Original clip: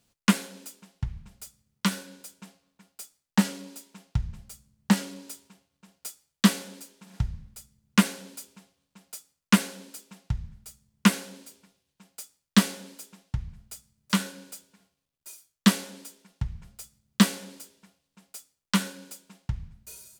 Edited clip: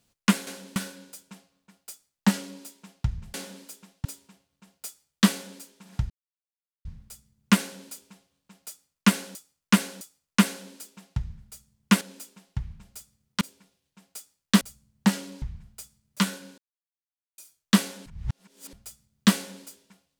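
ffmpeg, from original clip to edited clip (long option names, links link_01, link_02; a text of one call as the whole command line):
ffmpeg -i in.wav -filter_complex "[0:a]asplit=16[link_01][link_02][link_03][link_04][link_05][link_06][link_07][link_08][link_09][link_10][link_11][link_12][link_13][link_14][link_15][link_16];[link_01]atrim=end=0.472[link_17];[link_02]atrim=start=11.148:end=11.442[link_18];[link_03]atrim=start=1.868:end=4.452[link_19];[link_04]atrim=start=12.638:end=13.352[link_20];[link_05]atrim=start=5.258:end=7.31,asetpts=PTS-STARTPTS,afade=type=out:start_time=2.048:duration=0.004:curve=hsin,apad=pad_dur=0.75[link_21];[link_06]atrim=start=7.31:end=9.812,asetpts=PTS-STARTPTS,afade=type=in:duration=0.004:curve=hsin[link_22];[link_07]atrim=start=9.148:end=9.812[link_23];[link_08]atrim=start=9.148:end=11.152[link_24];[link_09]atrim=start=0.468:end=1.872[link_25];[link_10]atrim=start=11.438:end=12.642[link_26];[link_11]atrim=start=4.448:end=5.262[link_27];[link_12]atrim=start=13.348:end=14.51,asetpts=PTS-STARTPTS,afade=type=out:start_time=1.158:duration=0.004:curve=hsin[link_28];[link_13]atrim=start=14.51:end=15.31,asetpts=PTS-STARTPTS,volume=0[link_29];[link_14]atrim=start=15.31:end=15.992,asetpts=PTS-STARTPTS,afade=type=in:duration=0.004:curve=hsin[link_30];[link_15]atrim=start=15.988:end=16.662,asetpts=PTS-STARTPTS,areverse[link_31];[link_16]atrim=start=16.658[link_32];[link_17][link_18]acrossfade=duration=0.004:curve1=hsin:curve2=hsin[link_33];[link_33][link_19]acrossfade=duration=0.004:curve1=hsin:curve2=hsin[link_34];[link_34][link_20]acrossfade=duration=0.004:curve1=hsin:curve2=hsin[link_35];[link_21][link_22]concat=n=2:v=0:a=1[link_36];[link_35][link_36]acrossfade=duration=0.004:curve1=hsin:curve2=hsin[link_37];[link_37][link_23]acrossfade=duration=0.004:curve1=hsin:curve2=hsin[link_38];[link_38][link_24]acrossfade=duration=0.004:curve1=hsin:curve2=hsin[link_39];[link_39][link_25]acrossfade=duration=0.004:curve1=hsin:curve2=hsin[link_40];[link_40][link_26]acrossfade=duration=0.004:curve1=hsin:curve2=hsin[link_41];[link_41][link_27]acrossfade=duration=0.004:curve1=hsin:curve2=hsin[link_42];[link_28][link_29][link_30]concat=n=3:v=0:a=1[link_43];[link_42][link_43]acrossfade=duration=0.004:curve1=hsin:curve2=hsin[link_44];[link_44][link_31]acrossfade=duration=0.004:curve1=hsin:curve2=hsin[link_45];[link_45][link_32]acrossfade=duration=0.004:curve1=hsin:curve2=hsin" out.wav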